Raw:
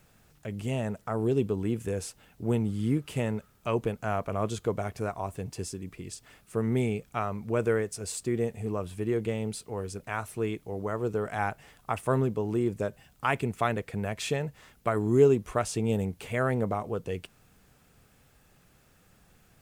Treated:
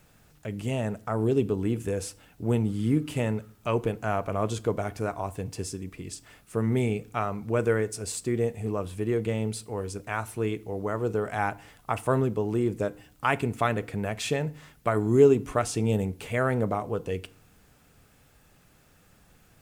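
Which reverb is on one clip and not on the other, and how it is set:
feedback delay network reverb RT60 0.47 s, low-frequency decay 1.35×, high-frequency decay 0.8×, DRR 15 dB
level +2 dB

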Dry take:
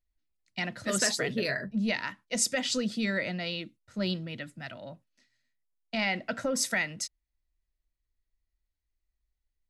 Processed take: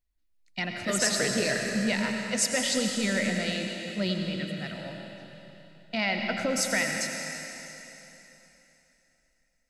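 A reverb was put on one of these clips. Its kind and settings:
comb and all-pass reverb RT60 3.3 s, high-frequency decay 1×, pre-delay 60 ms, DRR 2 dB
level +1 dB

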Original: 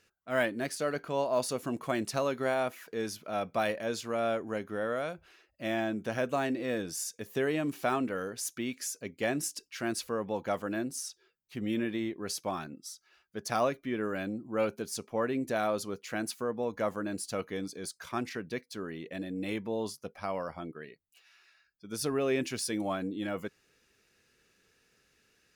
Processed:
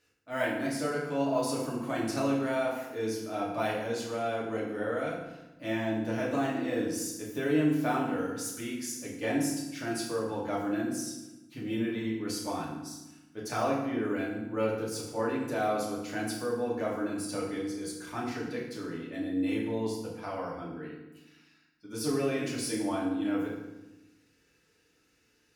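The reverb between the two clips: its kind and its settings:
feedback delay network reverb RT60 1 s, low-frequency decay 1.5×, high-frequency decay 0.75×, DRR −5.5 dB
level −6.5 dB

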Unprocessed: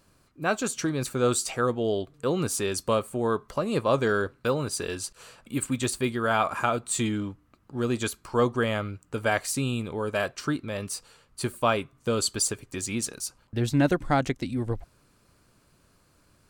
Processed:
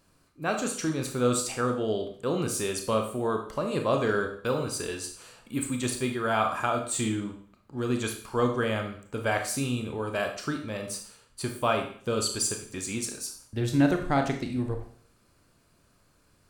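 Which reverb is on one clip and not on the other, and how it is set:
four-comb reverb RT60 0.52 s, combs from 25 ms, DRR 4 dB
level −3 dB

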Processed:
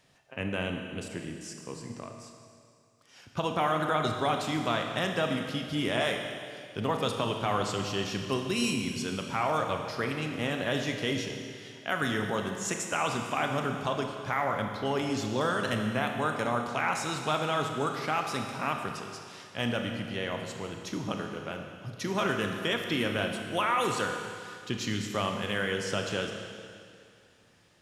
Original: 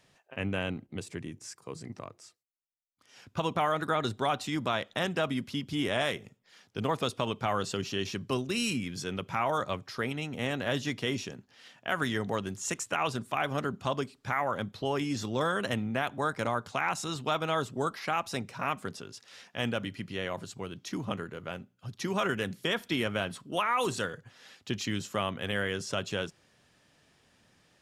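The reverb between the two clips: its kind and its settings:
four-comb reverb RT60 2.3 s, combs from 26 ms, DRR 3.5 dB

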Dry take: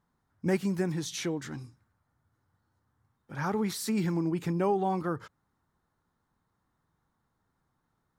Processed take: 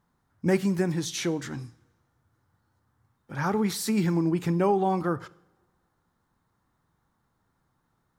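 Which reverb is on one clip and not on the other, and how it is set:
coupled-rooms reverb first 0.63 s, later 1.7 s, from −17 dB, DRR 16.5 dB
level +4 dB

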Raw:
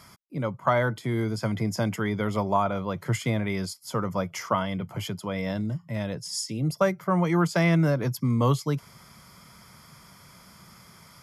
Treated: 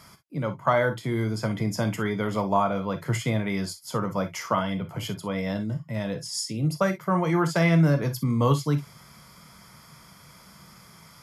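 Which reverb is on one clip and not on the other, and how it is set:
reverb whose tail is shaped and stops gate 80 ms flat, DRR 7 dB

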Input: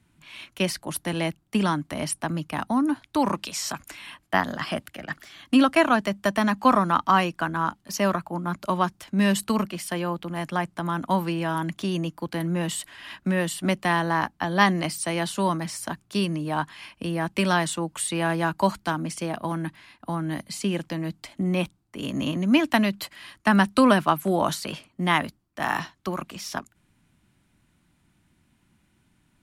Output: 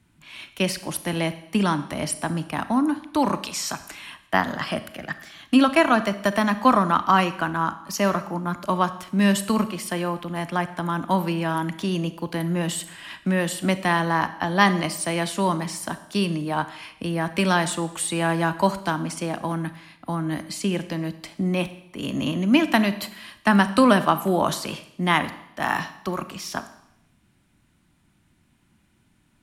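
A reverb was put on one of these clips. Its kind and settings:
four-comb reverb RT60 0.8 s, combs from 28 ms, DRR 12 dB
level +1.5 dB

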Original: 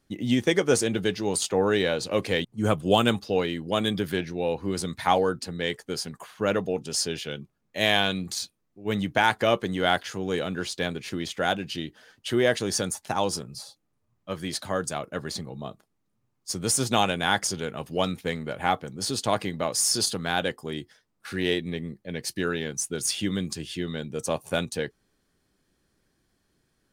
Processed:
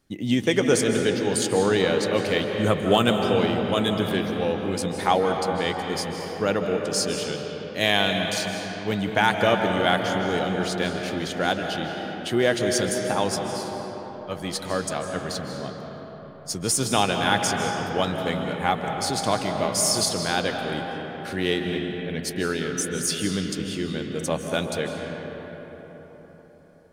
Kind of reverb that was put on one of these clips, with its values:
comb and all-pass reverb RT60 4.8 s, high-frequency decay 0.45×, pre-delay 115 ms, DRR 3 dB
level +1 dB

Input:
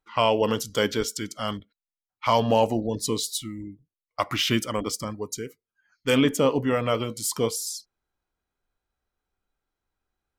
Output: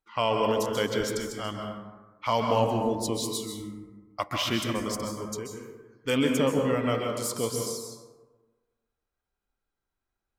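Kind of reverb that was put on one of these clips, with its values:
dense smooth reverb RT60 1.3 s, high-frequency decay 0.4×, pre-delay 120 ms, DRR 2 dB
level −5 dB

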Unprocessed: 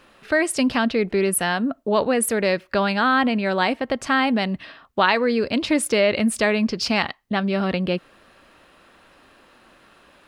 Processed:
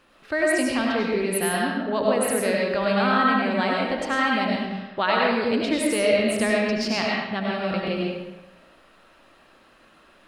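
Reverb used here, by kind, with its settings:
comb and all-pass reverb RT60 1.1 s, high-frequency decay 0.75×, pre-delay 55 ms, DRR −3 dB
level −6.5 dB

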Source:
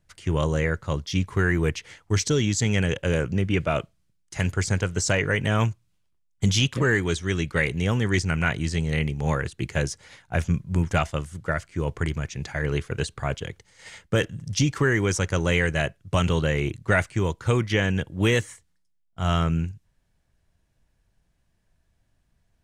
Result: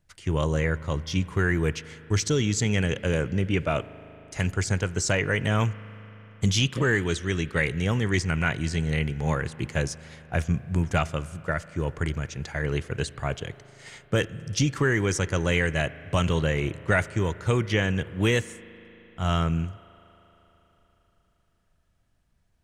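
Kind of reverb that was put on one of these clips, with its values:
spring reverb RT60 4 s, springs 38 ms, chirp 80 ms, DRR 17 dB
level −1.5 dB

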